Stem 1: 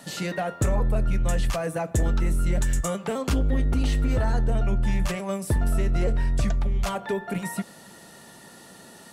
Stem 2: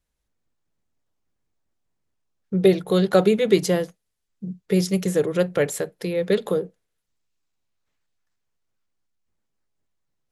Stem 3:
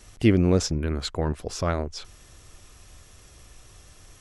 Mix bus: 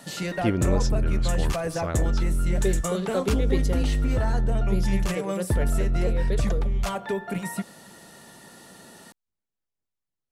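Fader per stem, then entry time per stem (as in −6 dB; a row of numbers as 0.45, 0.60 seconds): −0.5, −11.0, −5.5 decibels; 0.00, 0.00, 0.20 seconds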